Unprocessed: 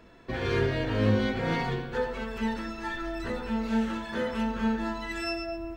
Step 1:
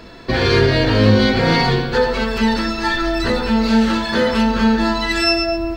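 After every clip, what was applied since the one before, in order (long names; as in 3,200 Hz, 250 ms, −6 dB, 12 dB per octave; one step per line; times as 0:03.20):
in parallel at +0.5 dB: brickwall limiter −23.5 dBFS, peak gain reduction 10.5 dB
on the sum: parametric band 4,500 Hz +11.5 dB 0.49 octaves
level +8.5 dB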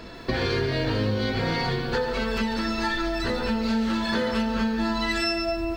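downward compressor, threshold −21 dBFS, peak gain reduction 13 dB
feedback echo at a low word length 143 ms, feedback 55%, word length 8 bits, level −13 dB
level −2 dB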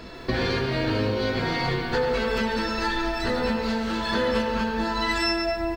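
double-tracking delay 16 ms −12.5 dB
bucket-brigade delay 101 ms, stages 2,048, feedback 71%, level −7.5 dB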